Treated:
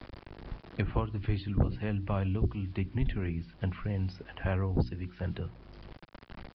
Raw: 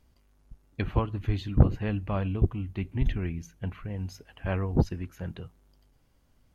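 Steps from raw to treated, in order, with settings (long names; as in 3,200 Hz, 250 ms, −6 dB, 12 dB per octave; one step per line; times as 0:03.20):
mains-hum notches 60/120/180/240/300/360 Hz
bit reduction 10 bits
downsampling to 11,025 Hz
multiband upward and downward compressor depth 70%
level −2 dB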